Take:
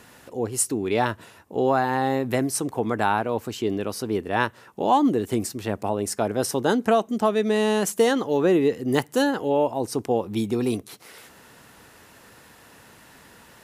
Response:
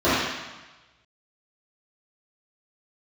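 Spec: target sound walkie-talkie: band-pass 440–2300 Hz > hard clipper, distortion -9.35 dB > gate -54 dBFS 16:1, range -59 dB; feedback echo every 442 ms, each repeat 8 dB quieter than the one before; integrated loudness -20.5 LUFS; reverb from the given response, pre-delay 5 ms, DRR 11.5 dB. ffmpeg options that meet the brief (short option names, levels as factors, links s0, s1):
-filter_complex "[0:a]aecho=1:1:442|884|1326|1768|2210:0.398|0.159|0.0637|0.0255|0.0102,asplit=2[s0][s1];[1:a]atrim=start_sample=2205,adelay=5[s2];[s1][s2]afir=irnorm=-1:irlink=0,volume=0.0211[s3];[s0][s3]amix=inputs=2:normalize=0,highpass=440,lowpass=2300,asoftclip=type=hard:threshold=0.0794,agate=range=0.00112:threshold=0.002:ratio=16,volume=2.51"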